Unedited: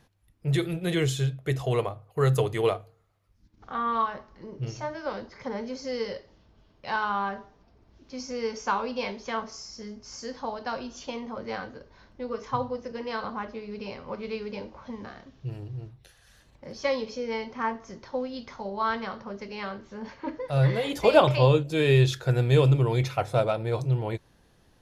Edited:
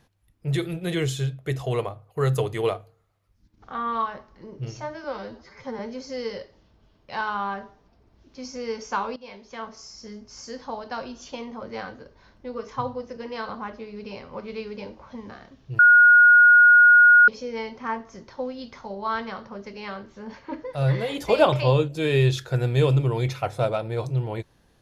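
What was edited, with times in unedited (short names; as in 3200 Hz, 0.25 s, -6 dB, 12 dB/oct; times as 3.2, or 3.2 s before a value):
5.04–5.54 stretch 1.5×
8.91–9.8 fade in, from -15.5 dB
15.54–17.03 bleep 1440 Hz -9.5 dBFS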